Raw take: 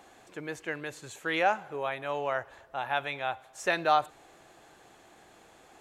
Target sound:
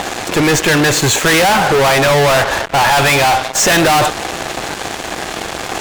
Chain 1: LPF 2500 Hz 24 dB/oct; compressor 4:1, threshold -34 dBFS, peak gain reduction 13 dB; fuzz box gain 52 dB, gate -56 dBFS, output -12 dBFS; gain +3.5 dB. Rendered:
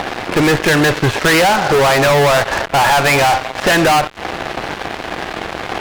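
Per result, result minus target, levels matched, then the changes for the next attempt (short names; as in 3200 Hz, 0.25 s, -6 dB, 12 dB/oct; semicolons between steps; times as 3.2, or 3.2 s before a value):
compressor: peak gain reduction +13 dB; 8000 Hz band -6.5 dB
remove: compressor 4:1, threshold -34 dBFS, peak gain reduction 13 dB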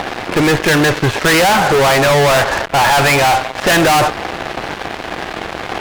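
8000 Hz band -6.0 dB
change: LPF 7800 Hz 24 dB/oct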